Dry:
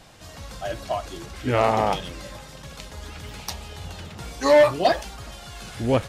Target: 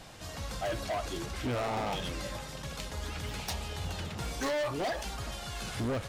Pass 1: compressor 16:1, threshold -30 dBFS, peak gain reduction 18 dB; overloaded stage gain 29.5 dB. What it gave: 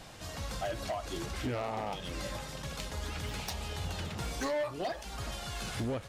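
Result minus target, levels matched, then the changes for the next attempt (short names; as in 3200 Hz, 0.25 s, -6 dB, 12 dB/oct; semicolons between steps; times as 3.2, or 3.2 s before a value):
compressor: peak gain reduction +7 dB
change: compressor 16:1, threshold -22.5 dBFS, peak gain reduction 11 dB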